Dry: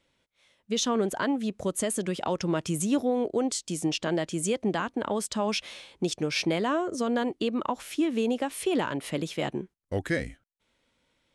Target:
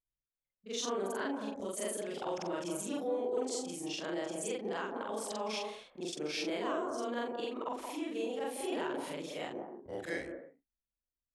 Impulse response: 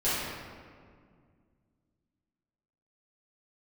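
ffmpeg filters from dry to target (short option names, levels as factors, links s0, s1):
-filter_complex "[0:a]afftfilt=real='re':imag='-im':win_size=4096:overlap=0.75,anlmdn=0.001,acrossover=split=270|1300[s0][s1][s2];[s0]acompressor=threshold=0.00251:ratio=6[s3];[s1]aecho=1:1:173|239|278:0.708|0.237|0.2[s4];[s3][s4][s2]amix=inputs=3:normalize=0,volume=0.631"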